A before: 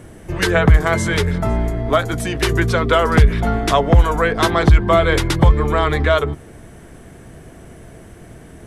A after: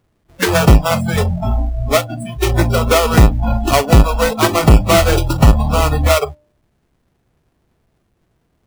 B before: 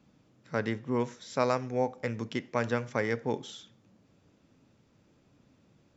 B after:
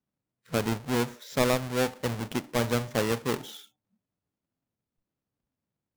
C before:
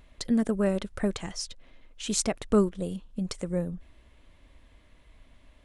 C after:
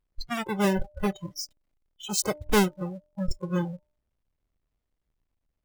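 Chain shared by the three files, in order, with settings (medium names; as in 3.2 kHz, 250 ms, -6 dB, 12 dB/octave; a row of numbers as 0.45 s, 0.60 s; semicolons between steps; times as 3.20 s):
square wave that keeps the level; spectral noise reduction 27 dB; de-hum 299.7 Hz, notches 3; trim -1.5 dB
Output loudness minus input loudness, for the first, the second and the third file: +2.5 LU, +3.0 LU, +0.5 LU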